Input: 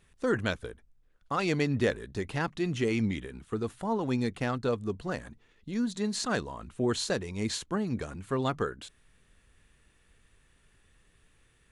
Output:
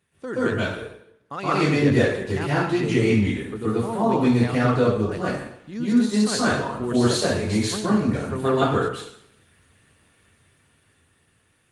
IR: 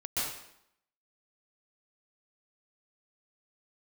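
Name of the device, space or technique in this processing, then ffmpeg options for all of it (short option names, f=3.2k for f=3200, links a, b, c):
far-field microphone of a smart speaker: -filter_complex "[1:a]atrim=start_sample=2205[a];[0:a][a]afir=irnorm=-1:irlink=0,highpass=f=87:w=0.5412,highpass=f=87:w=1.3066,dynaudnorm=f=270:g=11:m=4.5dB" -ar 48000 -c:a libopus -b:a 32k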